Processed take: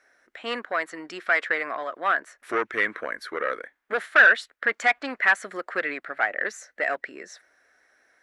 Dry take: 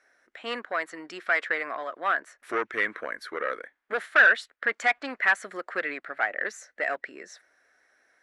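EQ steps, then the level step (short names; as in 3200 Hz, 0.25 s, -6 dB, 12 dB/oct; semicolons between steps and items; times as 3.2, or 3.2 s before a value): low shelf 150 Hz +3 dB; +2.5 dB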